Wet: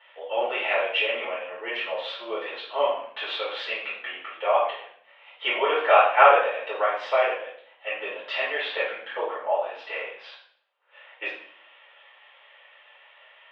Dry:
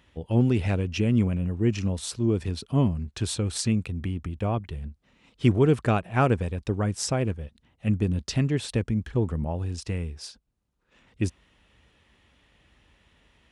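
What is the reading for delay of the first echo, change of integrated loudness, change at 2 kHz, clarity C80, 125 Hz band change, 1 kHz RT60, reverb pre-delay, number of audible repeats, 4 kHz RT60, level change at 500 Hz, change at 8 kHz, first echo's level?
no echo audible, +1.5 dB, +12.0 dB, 7.5 dB, below −40 dB, 0.55 s, 6 ms, no echo audible, 0.50 s, +5.5 dB, below −30 dB, no echo audible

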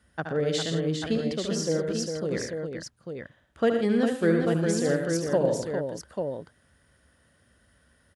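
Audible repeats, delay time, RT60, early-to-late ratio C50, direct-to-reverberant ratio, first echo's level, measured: 5, 73 ms, no reverb audible, no reverb audible, no reverb audible, −6.5 dB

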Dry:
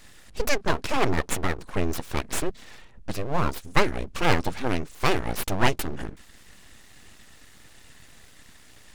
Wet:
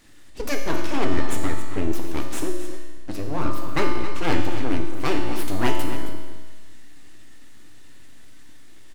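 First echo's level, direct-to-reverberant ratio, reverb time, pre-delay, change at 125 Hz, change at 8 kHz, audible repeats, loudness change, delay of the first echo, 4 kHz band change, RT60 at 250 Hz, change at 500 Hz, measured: −12.0 dB, 1.0 dB, 1.4 s, 3 ms, −0.5 dB, −2.5 dB, 1, −0.5 dB, 269 ms, −2.0 dB, 1.4 s, 0.0 dB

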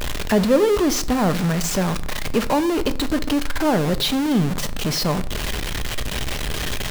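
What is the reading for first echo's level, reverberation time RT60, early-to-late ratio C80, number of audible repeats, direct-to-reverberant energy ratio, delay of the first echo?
no echo audible, 0.55 s, 21.5 dB, no echo audible, 11.0 dB, no echo audible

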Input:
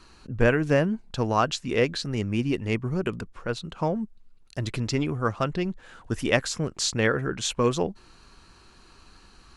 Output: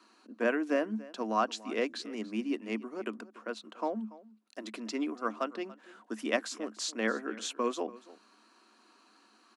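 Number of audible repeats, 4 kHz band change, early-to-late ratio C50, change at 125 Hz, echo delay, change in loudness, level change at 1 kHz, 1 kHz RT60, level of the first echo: 1, −9.0 dB, no reverb audible, below −25 dB, 286 ms, −8.0 dB, −5.5 dB, no reverb audible, −19.5 dB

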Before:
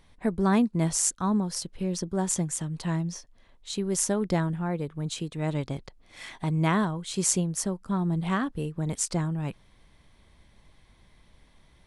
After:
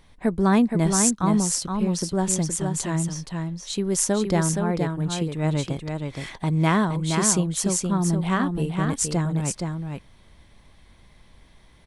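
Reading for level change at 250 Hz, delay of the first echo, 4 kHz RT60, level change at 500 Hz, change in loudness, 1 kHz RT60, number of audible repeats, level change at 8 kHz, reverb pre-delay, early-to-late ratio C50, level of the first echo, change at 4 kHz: +5.0 dB, 470 ms, no reverb audible, +5.0 dB, +4.5 dB, no reverb audible, 1, +5.0 dB, no reverb audible, no reverb audible, −5.0 dB, +5.0 dB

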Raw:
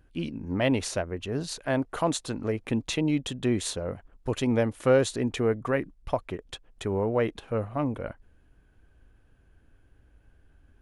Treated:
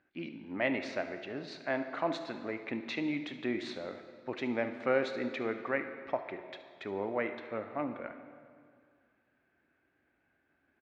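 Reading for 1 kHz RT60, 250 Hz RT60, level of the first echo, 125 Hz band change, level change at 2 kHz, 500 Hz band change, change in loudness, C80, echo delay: 2.1 s, 2.2 s, −16.5 dB, −18.5 dB, −1.5 dB, −7.5 dB, −7.5 dB, 10.0 dB, 72 ms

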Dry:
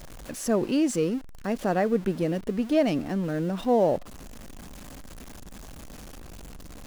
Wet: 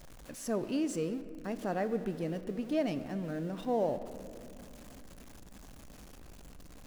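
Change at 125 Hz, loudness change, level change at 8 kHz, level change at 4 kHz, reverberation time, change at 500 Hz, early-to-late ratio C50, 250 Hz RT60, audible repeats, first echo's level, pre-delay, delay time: −8.5 dB, −9.0 dB, −9.0 dB, −9.0 dB, 2.6 s, −9.0 dB, 12.5 dB, 3.8 s, no echo audible, no echo audible, 7 ms, no echo audible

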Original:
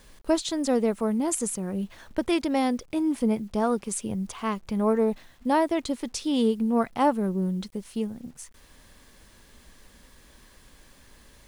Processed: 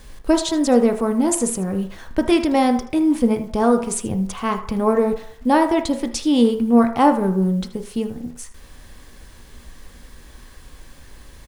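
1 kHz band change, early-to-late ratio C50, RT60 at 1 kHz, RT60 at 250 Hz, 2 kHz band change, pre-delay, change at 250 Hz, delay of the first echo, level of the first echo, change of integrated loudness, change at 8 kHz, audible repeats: +7.5 dB, 10.0 dB, 0.60 s, 0.40 s, +7.0 dB, 3 ms, +8.0 dB, 78 ms, −15.5 dB, +7.5 dB, +6.0 dB, 1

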